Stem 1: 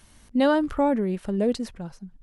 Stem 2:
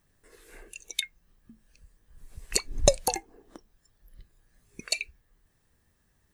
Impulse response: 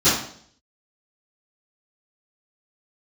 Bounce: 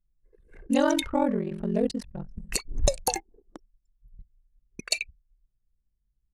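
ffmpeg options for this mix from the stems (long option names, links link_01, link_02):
-filter_complex "[0:a]lowshelf=frequency=240:gain=2,bandreject=frequency=187.4:width_type=h:width=4,bandreject=frequency=374.8:width_type=h:width=4,bandreject=frequency=562.2:width_type=h:width=4,bandreject=frequency=749.6:width_type=h:width=4,bandreject=frequency=937:width_type=h:width=4,bandreject=frequency=1124.4:width_type=h:width=4,bandreject=frequency=1311.8:width_type=h:width=4,bandreject=frequency=1499.2:width_type=h:width=4,bandreject=frequency=1686.6:width_type=h:width=4,bandreject=frequency=1874:width_type=h:width=4,bandreject=frequency=2061.4:width_type=h:width=4,bandreject=frequency=2248.8:width_type=h:width=4,bandreject=frequency=2436.2:width_type=h:width=4,bandreject=frequency=2623.6:width_type=h:width=4,bandreject=frequency=2811:width_type=h:width=4,bandreject=frequency=2998.4:width_type=h:width=4,bandreject=frequency=3185.8:width_type=h:width=4,aeval=exprs='val(0)*sin(2*PI*22*n/s)':channel_layout=same,adelay=350,volume=0dB[link_01];[1:a]volume=3dB[link_02];[link_01][link_02]amix=inputs=2:normalize=0,anlmdn=0.1,alimiter=limit=-9dB:level=0:latency=1:release=176"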